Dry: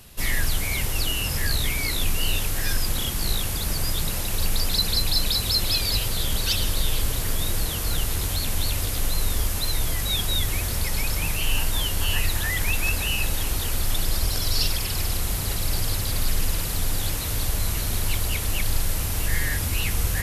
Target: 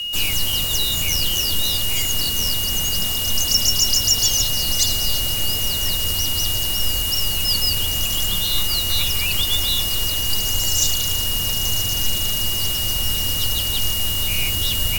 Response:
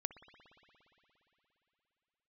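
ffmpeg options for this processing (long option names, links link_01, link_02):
-filter_complex "[0:a]asetrate=59535,aresample=44100,aeval=exprs='val(0)+0.0447*sin(2*PI*2900*n/s)':channel_layout=same,afreqshift=-30,acrossover=split=210|3300[link_01][link_02][link_03];[link_03]acontrast=83[link_04];[link_01][link_02][link_04]amix=inputs=3:normalize=0"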